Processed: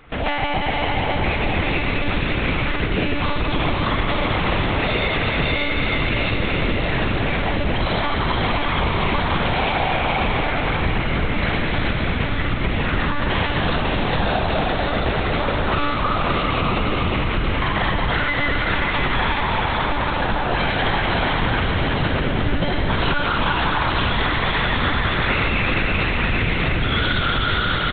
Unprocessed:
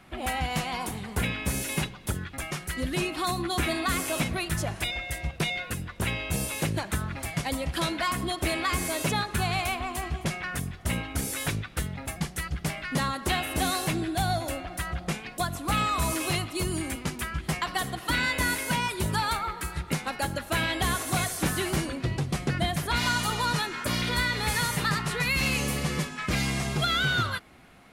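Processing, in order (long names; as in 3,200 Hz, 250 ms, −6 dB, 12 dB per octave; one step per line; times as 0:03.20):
0:19.17–0:20.05: phaser with its sweep stopped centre 360 Hz, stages 8
echo with shifted repeats 393 ms, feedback 56%, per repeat −37 Hz, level −4 dB
four-comb reverb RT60 2.7 s, combs from 30 ms, DRR −4.5 dB
in parallel at −5 dB: bit-depth reduction 6 bits, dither none
on the sum: one-pitch LPC vocoder at 8 kHz 290 Hz
downward compressor 5 to 1, threshold −24 dBFS, peak gain reduction 13.5 dB
single-tap delay 574 ms −7.5 dB
level +6 dB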